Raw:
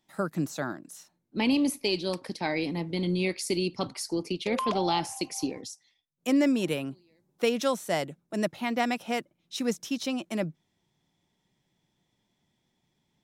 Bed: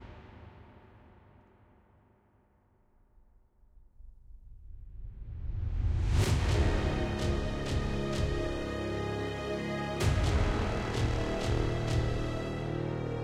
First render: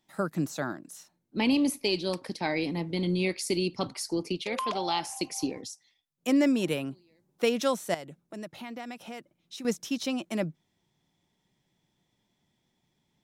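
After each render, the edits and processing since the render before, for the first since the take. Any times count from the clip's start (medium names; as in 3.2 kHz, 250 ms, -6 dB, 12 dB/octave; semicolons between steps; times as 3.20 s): 4.41–5.13 s: bass shelf 400 Hz -10.5 dB; 7.94–9.65 s: compression 3:1, threshold -40 dBFS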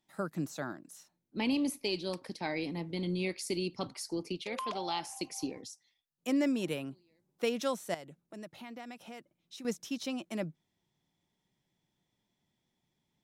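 trim -6 dB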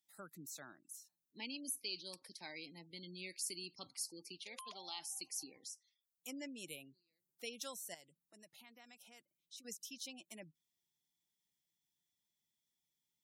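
pre-emphasis filter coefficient 0.9; spectral gate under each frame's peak -20 dB strong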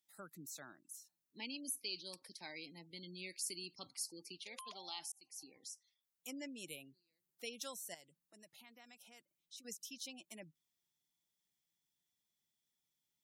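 5.12–5.73 s: fade in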